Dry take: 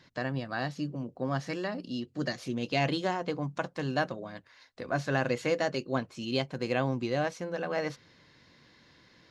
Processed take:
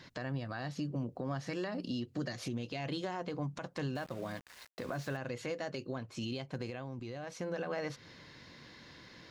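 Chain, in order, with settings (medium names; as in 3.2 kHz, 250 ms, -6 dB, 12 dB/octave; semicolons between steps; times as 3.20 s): dynamic bell 110 Hz, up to +8 dB, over -55 dBFS, Q 4.2; compression 8:1, threshold -38 dBFS, peak gain reduction 15.5 dB; peak limiter -33.5 dBFS, peak gain reduction 9.5 dB; 3.95–5.17 s: small samples zeroed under -55 dBFS; 6.70–7.29 s: level held to a coarse grid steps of 12 dB; trim +5.5 dB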